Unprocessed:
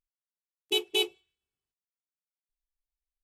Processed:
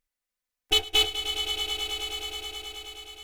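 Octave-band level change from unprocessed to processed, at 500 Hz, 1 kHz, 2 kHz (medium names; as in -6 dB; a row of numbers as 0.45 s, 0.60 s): -1.0 dB, +10.0 dB, +5.5 dB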